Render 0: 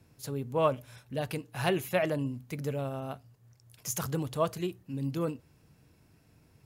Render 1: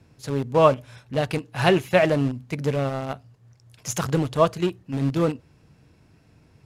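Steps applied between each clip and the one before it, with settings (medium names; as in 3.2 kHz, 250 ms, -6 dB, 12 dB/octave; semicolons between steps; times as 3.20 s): in parallel at -5 dB: small samples zeroed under -31 dBFS; on the sum: distance through air 54 m; trim +6.5 dB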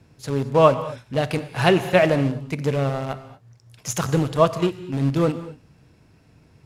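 gated-style reverb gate 260 ms flat, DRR 12 dB; trim +1.5 dB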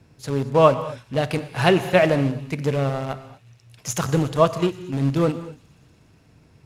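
feedback echo behind a high-pass 120 ms, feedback 83%, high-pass 3.2 kHz, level -23 dB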